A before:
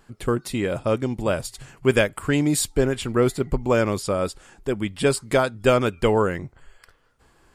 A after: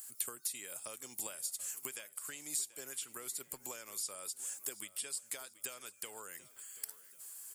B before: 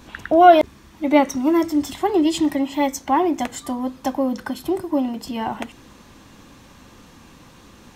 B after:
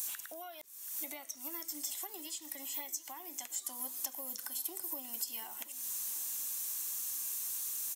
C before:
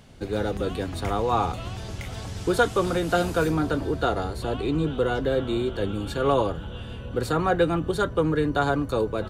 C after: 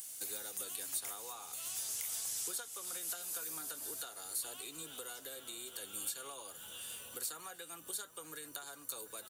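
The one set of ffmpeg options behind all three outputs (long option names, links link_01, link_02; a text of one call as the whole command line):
ffmpeg -i in.wav -filter_complex "[0:a]acrossover=split=5600[link_01][link_02];[link_02]acompressor=threshold=-53dB:ratio=4:attack=1:release=60[link_03];[link_01][link_03]amix=inputs=2:normalize=0,aderivative,acompressor=threshold=-51dB:ratio=12,aecho=1:1:734|1468|2202:0.126|0.0516|0.0212,acrossover=split=130|1000|6100[link_04][link_05][link_06][link_07];[link_07]crystalizer=i=6:c=0[link_08];[link_04][link_05][link_06][link_08]amix=inputs=4:normalize=0,volume=4.5dB" out.wav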